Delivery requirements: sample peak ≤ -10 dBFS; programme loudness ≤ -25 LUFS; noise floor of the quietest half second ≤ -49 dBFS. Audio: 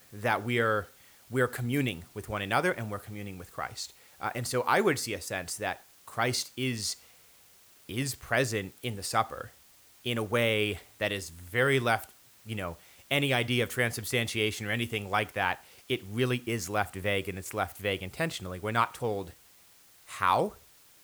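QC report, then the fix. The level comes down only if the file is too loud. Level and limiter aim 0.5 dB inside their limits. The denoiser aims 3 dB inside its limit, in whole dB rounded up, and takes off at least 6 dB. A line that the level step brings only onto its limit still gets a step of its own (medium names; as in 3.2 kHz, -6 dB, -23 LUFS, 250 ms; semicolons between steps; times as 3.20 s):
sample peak -11.0 dBFS: pass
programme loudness -30.5 LUFS: pass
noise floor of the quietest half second -58 dBFS: pass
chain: none needed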